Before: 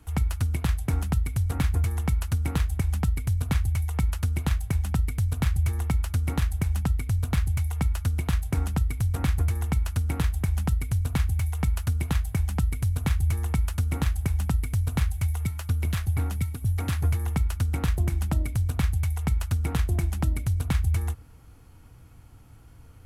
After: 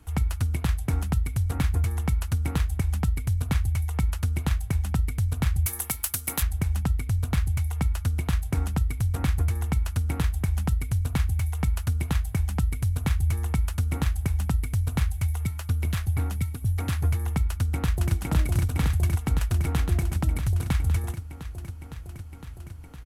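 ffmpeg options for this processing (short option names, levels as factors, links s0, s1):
-filter_complex "[0:a]asplit=3[s0][s1][s2];[s0]afade=t=out:st=5.65:d=0.02[s3];[s1]aemphasis=mode=production:type=riaa,afade=t=in:st=5.65:d=0.02,afade=t=out:st=6.41:d=0.02[s4];[s2]afade=t=in:st=6.41:d=0.02[s5];[s3][s4][s5]amix=inputs=3:normalize=0,asplit=2[s6][s7];[s7]afade=t=in:st=17.49:d=0.01,afade=t=out:st=18.13:d=0.01,aecho=0:1:510|1020|1530|2040|2550|3060|3570|4080|4590|5100|5610|6120:0.891251|0.713001|0.570401|0.45632|0.365056|0.292045|0.233636|0.186909|0.149527|0.119622|0.0956973|0.0765579[s8];[s6][s8]amix=inputs=2:normalize=0"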